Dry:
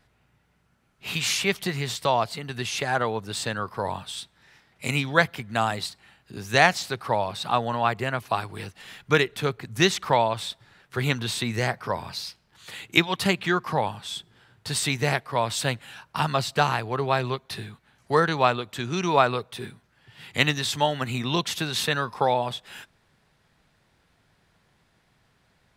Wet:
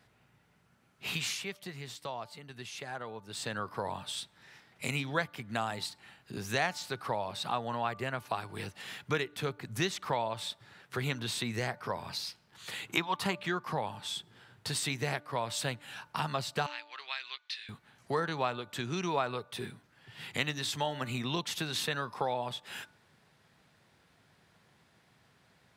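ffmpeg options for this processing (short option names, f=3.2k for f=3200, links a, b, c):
-filter_complex "[0:a]asettb=1/sr,asplit=3[a][b][c];[a]atrim=end=12.874[d];[b]atrim=start=12.87:end=13.38,asetpts=PTS-STARTPTS,afade=t=in:d=0.004:c=qsin,afade=t=out:st=0.506:d=0.004:c=qsin,equalizer=f=1k:t=o:w=0.88:g=10[e];[c]atrim=start=13.376[f];[d][e]acrossfade=d=0.004:c1=hsin:c2=qsin[g];[g][f]acrossfade=d=0.004:c1=qsin:c2=hsin,asettb=1/sr,asplit=3[h][i][j];[h]atrim=end=16.664[k];[i]atrim=start=16.66:end=17.69,asetpts=PTS-STARTPTS,afade=t=in:d=0.004:c=qsin,afade=t=out:st=1.026:d=0.004:c=qsin,asuperpass=centerf=3300:order=4:qfactor=0.94[l];[j]atrim=start=17.686[m];[k][l]acrossfade=d=0.004:c1=hsin:c2=qsin[n];[n][m]acrossfade=d=0.004:c1=qsin:c2=hsin,asplit=3[o][p][q];[o]atrim=end=1.6,asetpts=PTS-STARTPTS,afade=t=out:st=1.21:d=0.39:c=qua:silence=0.199526[r];[p]atrim=start=1.6:end=3.19,asetpts=PTS-STARTPTS,volume=-14dB[s];[q]atrim=start=3.19,asetpts=PTS-STARTPTS,afade=t=in:d=0.39:c=qua:silence=0.199526[t];[r][s][t]concat=n=3:v=0:a=1,highpass=93,bandreject=f=294.2:t=h:w=4,bandreject=f=588.4:t=h:w=4,bandreject=f=882.6:t=h:w=4,bandreject=f=1.1768k:t=h:w=4,bandreject=f=1.471k:t=h:w=4,acompressor=threshold=-37dB:ratio=2"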